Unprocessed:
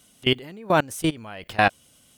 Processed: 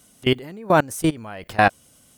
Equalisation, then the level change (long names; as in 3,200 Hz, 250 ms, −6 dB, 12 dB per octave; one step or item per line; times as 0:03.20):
parametric band 3,100 Hz −6.5 dB 1 octave
+3.5 dB